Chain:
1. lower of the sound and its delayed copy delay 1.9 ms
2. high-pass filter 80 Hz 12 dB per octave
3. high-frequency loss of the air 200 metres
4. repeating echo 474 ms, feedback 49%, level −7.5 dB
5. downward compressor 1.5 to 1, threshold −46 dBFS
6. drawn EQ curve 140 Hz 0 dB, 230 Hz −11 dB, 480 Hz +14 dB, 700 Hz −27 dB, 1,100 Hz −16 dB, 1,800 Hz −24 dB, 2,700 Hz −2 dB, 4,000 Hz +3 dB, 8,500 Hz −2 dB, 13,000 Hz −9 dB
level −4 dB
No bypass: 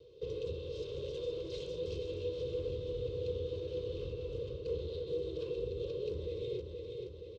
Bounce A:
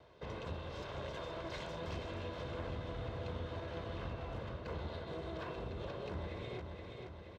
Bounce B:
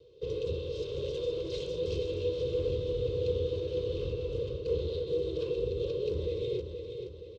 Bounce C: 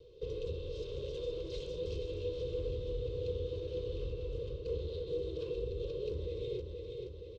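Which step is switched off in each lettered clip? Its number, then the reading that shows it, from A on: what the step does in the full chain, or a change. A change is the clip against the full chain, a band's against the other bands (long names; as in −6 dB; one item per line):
6, change in integrated loudness −4.5 LU
5, average gain reduction 4.5 dB
2, 125 Hz band +2.5 dB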